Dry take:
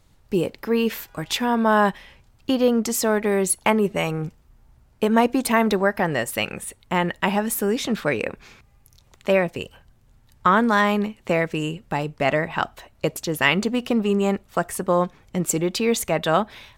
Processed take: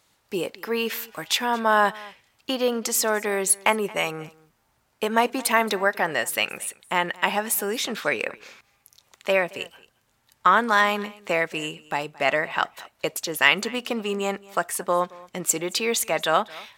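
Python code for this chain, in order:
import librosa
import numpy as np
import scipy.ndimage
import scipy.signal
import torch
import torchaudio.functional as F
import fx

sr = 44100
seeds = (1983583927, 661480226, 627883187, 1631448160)

y = fx.highpass(x, sr, hz=880.0, slope=6)
y = y + 10.0 ** (-22.0 / 20.0) * np.pad(y, (int(223 * sr / 1000.0), 0))[:len(y)]
y = y * 10.0 ** (2.5 / 20.0)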